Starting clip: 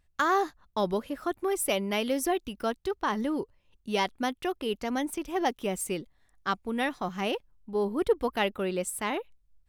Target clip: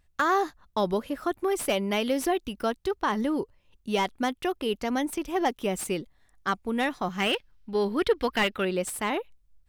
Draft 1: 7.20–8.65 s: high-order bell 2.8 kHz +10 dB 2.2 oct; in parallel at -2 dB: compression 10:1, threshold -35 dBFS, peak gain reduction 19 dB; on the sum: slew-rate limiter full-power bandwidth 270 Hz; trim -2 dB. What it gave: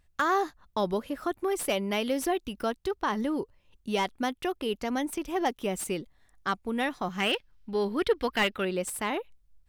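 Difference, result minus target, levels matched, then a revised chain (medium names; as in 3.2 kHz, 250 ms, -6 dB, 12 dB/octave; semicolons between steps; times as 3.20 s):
compression: peak gain reduction +8.5 dB
7.20–8.65 s: high-order bell 2.8 kHz +10 dB 2.2 oct; in parallel at -2 dB: compression 10:1, threshold -25.5 dBFS, peak gain reduction 10.5 dB; on the sum: slew-rate limiter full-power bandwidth 270 Hz; trim -2 dB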